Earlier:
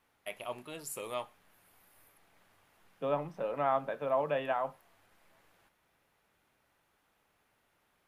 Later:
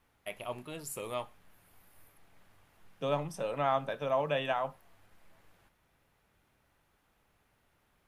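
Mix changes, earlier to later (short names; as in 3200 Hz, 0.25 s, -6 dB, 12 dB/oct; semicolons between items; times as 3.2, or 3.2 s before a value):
first voice: add low shelf 160 Hz +11.5 dB; second voice: remove BPF 180–2000 Hz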